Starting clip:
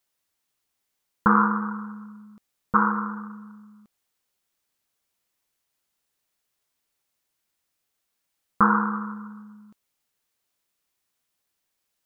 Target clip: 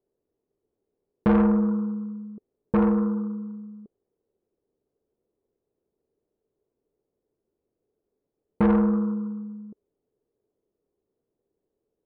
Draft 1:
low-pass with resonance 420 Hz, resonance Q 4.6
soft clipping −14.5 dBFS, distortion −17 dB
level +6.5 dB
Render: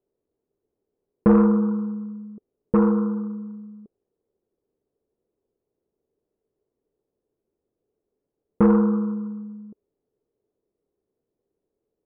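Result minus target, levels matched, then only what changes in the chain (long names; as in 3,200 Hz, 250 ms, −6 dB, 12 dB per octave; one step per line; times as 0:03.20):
soft clipping: distortion −7 dB
change: soft clipping −21.5 dBFS, distortion −9 dB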